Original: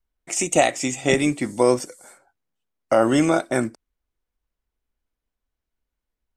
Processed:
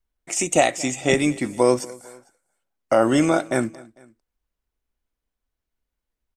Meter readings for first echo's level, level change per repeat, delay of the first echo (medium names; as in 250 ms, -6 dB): -22.5 dB, -6.0 dB, 225 ms